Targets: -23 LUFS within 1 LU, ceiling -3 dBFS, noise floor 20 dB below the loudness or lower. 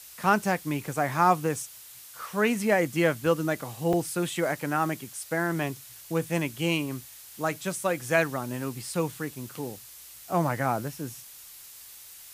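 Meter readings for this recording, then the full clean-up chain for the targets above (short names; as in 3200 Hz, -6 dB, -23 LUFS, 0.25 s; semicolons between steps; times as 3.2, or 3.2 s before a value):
dropouts 1; longest dropout 4.2 ms; noise floor -47 dBFS; noise floor target -48 dBFS; loudness -28.0 LUFS; peak -8.5 dBFS; loudness target -23.0 LUFS
-> interpolate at 3.93, 4.2 ms; noise print and reduce 6 dB; gain +5 dB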